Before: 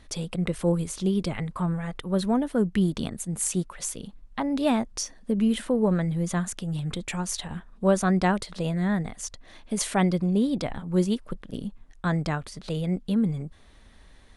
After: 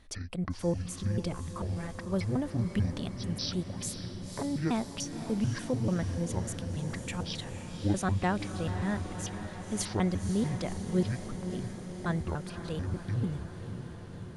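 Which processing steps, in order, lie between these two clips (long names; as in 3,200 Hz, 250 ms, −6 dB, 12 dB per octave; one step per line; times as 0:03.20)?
pitch shifter gated in a rhythm −11 semitones, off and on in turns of 147 ms
feedback delay with all-pass diffusion 527 ms, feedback 72%, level −9.5 dB
level −6 dB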